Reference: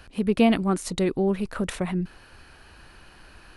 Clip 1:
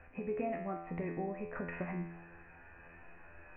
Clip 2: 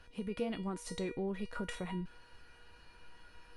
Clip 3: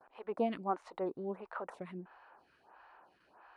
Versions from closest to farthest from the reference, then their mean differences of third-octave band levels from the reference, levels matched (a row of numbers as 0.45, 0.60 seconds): 2, 3, 1; 4.0, 7.0, 9.5 decibels